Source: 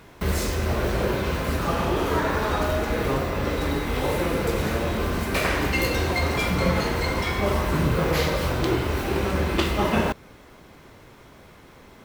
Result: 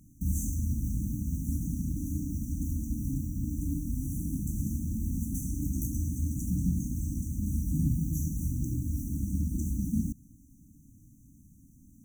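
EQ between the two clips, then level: brick-wall FIR band-stop 310–5800 Hz; -4.0 dB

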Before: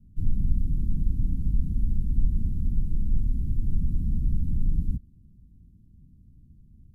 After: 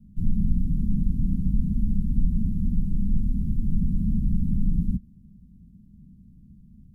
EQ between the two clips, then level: EQ curve 120 Hz 0 dB, 200 Hz +12 dB, 350 Hz -3 dB, 540 Hz +5 dB, 790 Hz +1 dB; 0.0 dB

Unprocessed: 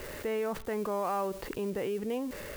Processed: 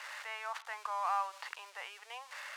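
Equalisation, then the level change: steep high-pass 830 Hz 36 dB/oct; air absorption 70 m; +2.5 dB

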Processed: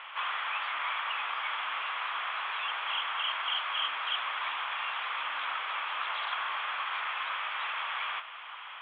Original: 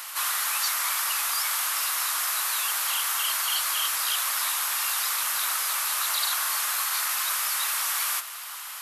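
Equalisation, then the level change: rippled Chebyshev low-pass 3400 Hz, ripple 3 dB; 0.0 dB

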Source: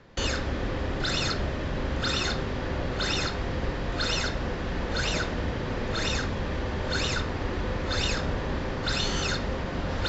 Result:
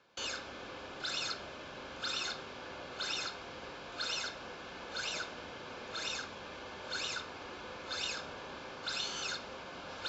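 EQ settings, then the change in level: HPF 1000 Hz 6 dB/oct; Butterworth band-stop 1900 Hz, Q 6.3; -7.0 dB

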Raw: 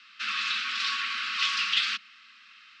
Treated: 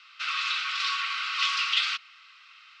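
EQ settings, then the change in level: resonant high-pass 670 Hz, resonance Q 6.5; notch 1700 Hz, Q 8.1; 0.0 dB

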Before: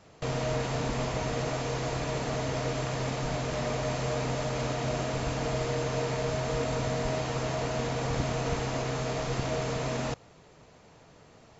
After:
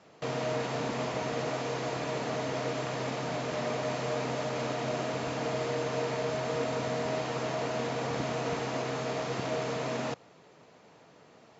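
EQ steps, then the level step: HPF 180 Hz 12 dB/oct; air absorption 60 m; 0.0 dB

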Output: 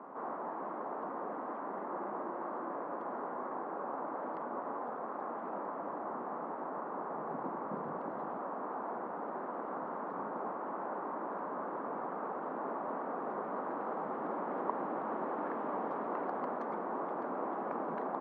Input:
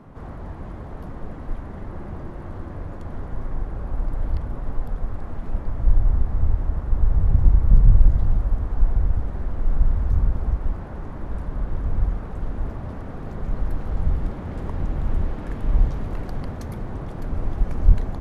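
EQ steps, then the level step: Bessel high-pass 400 Hz, order 8; synth low-pass 1100 Hz, resonance Q 1.9; +1.0 dB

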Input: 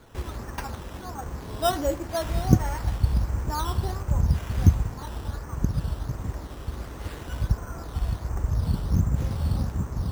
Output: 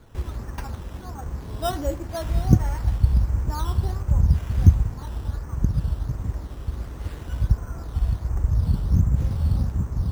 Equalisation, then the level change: low shelf 190 Hz +9 dB; -3.5 dB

